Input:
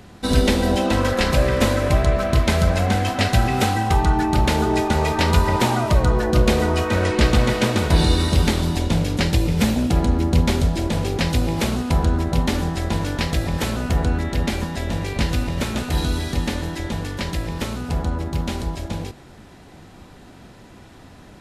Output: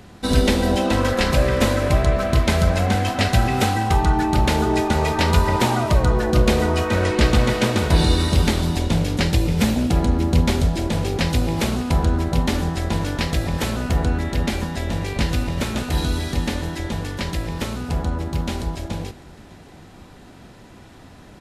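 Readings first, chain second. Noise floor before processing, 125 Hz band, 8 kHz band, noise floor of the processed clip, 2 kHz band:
-44 dBFS, 0.0 dB, 0.0 dB, -44 dBFS, 0.0 dB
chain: echo 0.605 s -22.5 dB

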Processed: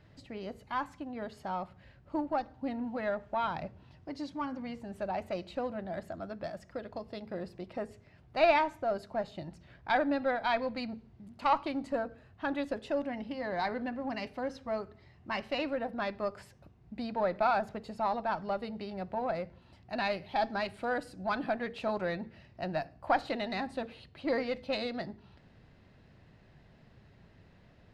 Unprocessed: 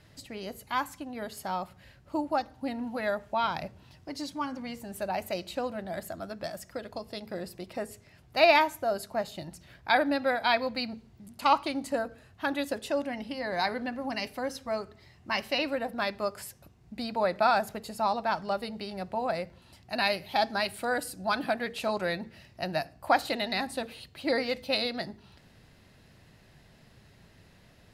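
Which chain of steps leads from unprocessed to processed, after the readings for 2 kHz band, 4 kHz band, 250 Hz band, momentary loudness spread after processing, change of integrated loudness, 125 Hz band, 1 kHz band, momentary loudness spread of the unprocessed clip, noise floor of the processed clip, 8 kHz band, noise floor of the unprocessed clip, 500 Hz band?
-6.0 dB, -9.5 dB, -2.0 dB, 13 LU, -4.0 dB, -1.5 dB, -3.5 dB, 14 LU, -60 dBFS, under -15 dB, -58 dBFS, -3.0 dB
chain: in parallel at -5 dB: one-sided clip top -32 dBFS; on the sum: tape spacing loss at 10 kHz 21 dB; gain -4.5 dB

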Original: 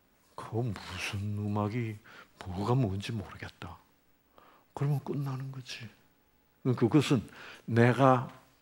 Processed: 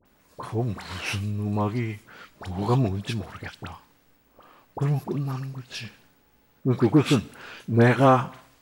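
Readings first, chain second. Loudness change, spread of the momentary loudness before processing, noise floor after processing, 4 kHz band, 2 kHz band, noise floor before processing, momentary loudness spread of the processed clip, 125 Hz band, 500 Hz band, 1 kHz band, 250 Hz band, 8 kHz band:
+6.0 dB, 20 LU, -62 dBFS, +6.0 dB, +6.0 dB, -68 dBFS, 21 LU, +6.0 dB, +6.0 dB, +6.0 dB, +6.0 dB, +6.0 dB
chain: dispersion highs, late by 54 ms, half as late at 1400 Hz; gain +6 dB

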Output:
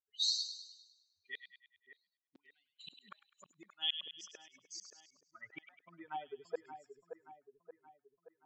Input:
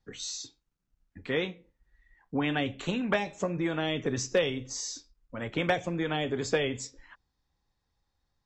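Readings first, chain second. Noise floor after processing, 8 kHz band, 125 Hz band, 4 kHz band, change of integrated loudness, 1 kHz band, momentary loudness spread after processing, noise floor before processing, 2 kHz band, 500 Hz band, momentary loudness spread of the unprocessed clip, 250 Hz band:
under -85 dBFS, -10.0 dB, -36.5 dB, -1.5 dB, -9.0 dB, -13.5 dB, 23 LU, -81 dBFS, -18.5 dB, -20.5 dB, 11 LU, -30.0 dB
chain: per-bin expansion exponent 3; random-step tremolo 1.7 Hz, depth 75%; flipped gate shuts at -32 dBFS, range -40 dB; band-pass sweep 4100 Hz -> 790 Hz, 3.43–6.5; on a send: split-band echo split 1800 Hz, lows 0.576 s, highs 0.102 s, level -9 dB; on the sum: gain +13 dB

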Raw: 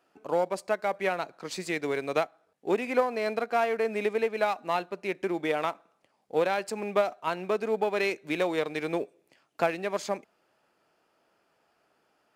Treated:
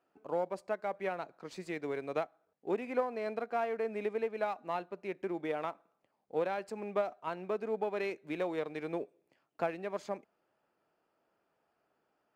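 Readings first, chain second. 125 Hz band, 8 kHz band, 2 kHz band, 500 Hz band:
-6.5 dB, under -15 dB, -10.5 dB, -7.0 dB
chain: high shelf 2500 Hz -10.5 dB; gain -6.5 dB

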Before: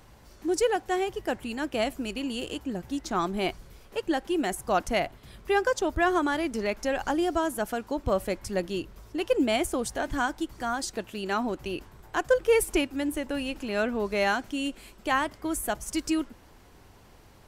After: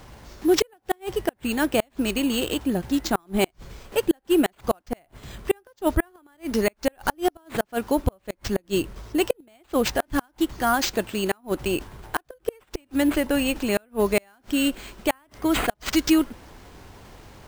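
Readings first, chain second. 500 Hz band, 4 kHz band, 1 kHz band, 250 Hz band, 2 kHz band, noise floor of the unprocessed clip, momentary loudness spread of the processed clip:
+2.0 dB, +5.0 dB, 0.0 dB, +6.0 dB, +0.5 dB, -54 dBFS, 10 LU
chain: added harmonics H 4 -44 dB, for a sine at -12 dBFS; sample-and-hold 4×; flipped gate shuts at -17 dBFS, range -38 dB; gain +8.5 dB

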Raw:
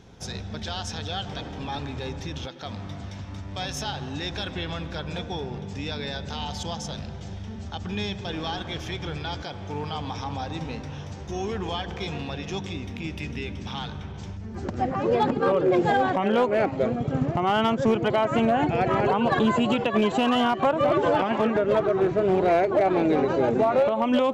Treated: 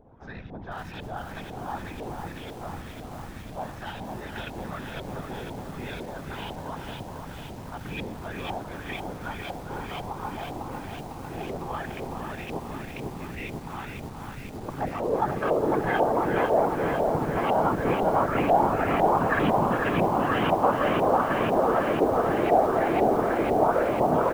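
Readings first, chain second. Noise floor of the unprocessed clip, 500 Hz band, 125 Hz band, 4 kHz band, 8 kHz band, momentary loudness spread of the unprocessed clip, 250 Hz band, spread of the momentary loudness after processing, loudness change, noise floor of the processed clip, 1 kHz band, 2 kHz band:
-37 dBFS, -1.5 dB, -3.0 dB, -9.0 dB, -5.5 dB, 14 LU, -3.5 dB, 16 LU, -1.0 dB, -40 dBFS, +1.0 dB, 0.0 dB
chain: LFO low-pass saw up 2 Hz 670–2800 Hz; whisperiser; on a send: echo 0.413 s -10.5 dB; on the sum: lo-fi delay 0.499 s, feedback 80%, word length 7-bit, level -5 dB; gain -6 dB

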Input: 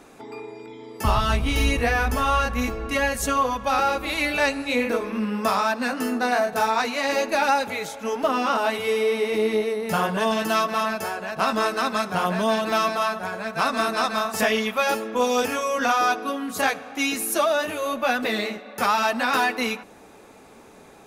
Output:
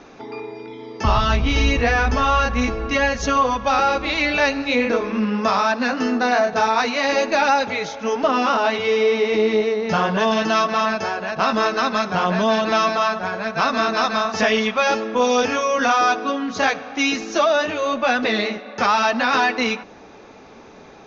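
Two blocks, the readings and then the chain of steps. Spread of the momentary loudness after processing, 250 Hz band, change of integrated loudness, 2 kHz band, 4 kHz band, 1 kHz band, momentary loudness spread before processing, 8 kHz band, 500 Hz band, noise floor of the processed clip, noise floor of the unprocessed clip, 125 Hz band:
5 LU, +4.5 dB, +4.0 dB, +4.0 dB, +4.0 dB, +4.0 dB, 6 LU, -0.5 dB, +4.0 dB, -43 dBFS, -48 dBFS, +4.0 dB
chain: steep low-pass 6400 Hz 96 dB/oct; in parallel at -2.5 dB: limiter -15.5 dBFS, peak gain reduction 7.5 dB

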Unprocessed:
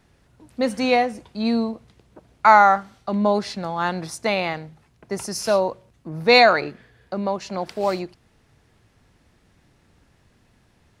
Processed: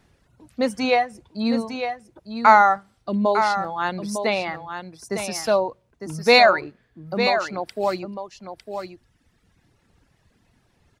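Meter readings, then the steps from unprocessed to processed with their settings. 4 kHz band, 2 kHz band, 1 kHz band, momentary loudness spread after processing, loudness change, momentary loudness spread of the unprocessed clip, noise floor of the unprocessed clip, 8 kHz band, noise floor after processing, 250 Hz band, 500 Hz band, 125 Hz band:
0.0 dB, 0.0 dB, -0.5 dB, 21 LU, -0.5 dB, 19 LU, -61 dBFS, 0.0 dB, -65 dBFS, -1.0 dB, 0.0 dB, -2.0 dB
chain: reverb removal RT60 1.9 s; echo 0.904 s -8 dB

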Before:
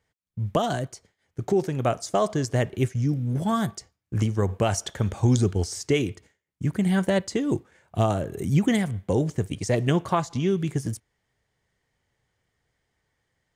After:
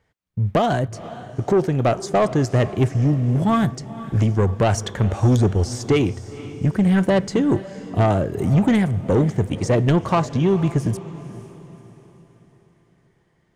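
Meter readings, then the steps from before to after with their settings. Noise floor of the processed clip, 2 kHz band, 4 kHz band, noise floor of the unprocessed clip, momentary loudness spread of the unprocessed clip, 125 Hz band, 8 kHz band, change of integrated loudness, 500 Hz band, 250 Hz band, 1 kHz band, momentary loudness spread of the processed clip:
-62 dBFS, +4.0 dB, +2.0 dB, -79 dBFS, 9 LU, +6.0 dB, -0.5 dB, +5.5 dB, +5.5 dB, +6.0 dB, +5.5 dB, 11 LU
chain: high shelf 3800 Hz -10.5 dB; soft clip -19.5 dBFS, distortion -13 dB; on a send: diffused feedback echo 0.484 s, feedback 43%, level -15.5 dB; on the sum: gain +8.5 dB

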